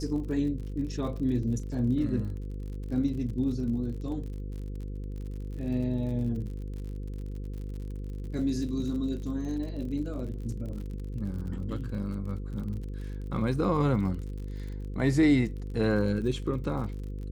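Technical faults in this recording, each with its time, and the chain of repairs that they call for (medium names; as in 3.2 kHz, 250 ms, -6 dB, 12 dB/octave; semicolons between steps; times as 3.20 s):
buzz 50 Hz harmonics 10 -36 dBFS
crackle 54 per s -39 dBFS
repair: de-click; de-hum 50 Hz, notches 10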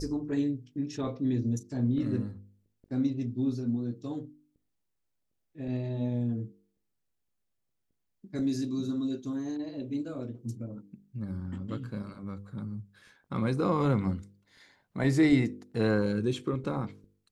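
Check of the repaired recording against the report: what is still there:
nothing left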